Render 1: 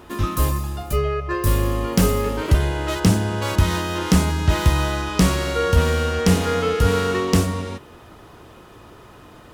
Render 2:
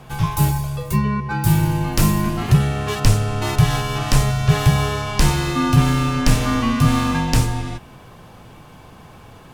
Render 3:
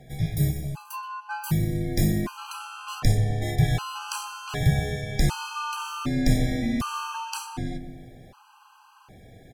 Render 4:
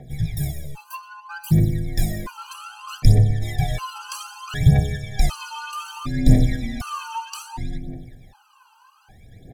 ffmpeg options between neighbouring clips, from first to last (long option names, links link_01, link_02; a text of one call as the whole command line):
ffmpeg -i in.wav -af "afreqshift=-210,volume=2dB" out.wav
ffmpeg -i in.wav -filter_complex "[0:a]asplit=2[link_01][link_02];[link_02]adelay=124,lowpass=frequency=1100:poles=1,volume=-7.5dB,asplit=2[link_03][link_04];[link_04]adelay=124,lowpass=frequency=1100:poles=1,volume=0.54,asplit=2[link_05][link_06];[link_06]adelay=124,lowpass=frequency=1100:poles=1,volume=0.54,asplit=2[link_07][link_08];[link_08]adelay=124,lowpass=frequency=1100:poles=1,volume=0.54,asplit=2[link_09][link_10];[link_10]adelay=124,lowpass=frequency=1100:poles=1,volume=0.54,asplit=2[link_11][link_12];[link_12]adelay=124,lowpass=frequency=1100:poles=1,volume=0.54,asplit=2[link_13][link_14];[link_14]adelay=124,lowpass=frequency=1100:poles=1,volume=0.54[link_15];[link_01][link_03][link_05][link_07][link_09][link_11][link_13][link_15]amix=inputs=8:normalize=0,afftfilt=real='re*gt(sin(2*PI*0.66*pts/sr)*(1-2*mod(floor(b*sr/1024/810),2)),0)':imag='im*gt(sin(2*PI*0.66*pts/sr)*(1-2*mod(floor(b*sr/1024/810),2)),0)':win_size=1024:overlap=0.75,volume=-6dB" out.wav
ffmpeg -i in.wav -af "aphaser=in_gain=1:out_gain=1:delay=2.3:decay=0.75:speed=0.63:type=triangular,volume=-3.5dB" out.wav